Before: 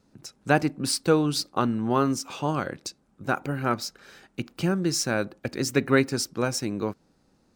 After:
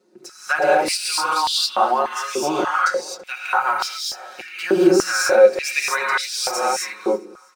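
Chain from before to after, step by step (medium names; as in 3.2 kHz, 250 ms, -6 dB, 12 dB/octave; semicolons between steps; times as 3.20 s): comb 5.5 ms, depth 97%; gated-style reverb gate 280 ms rising, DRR -5 dB; peak limiter -9 dBFS, peak gain reduction 8 dB; on a send: feedback delay 329 ms, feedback 42%, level -23 dB; on the sum: step-sequenced high-pass 3.4 Hz 370–3400 Hz; trim -2 dB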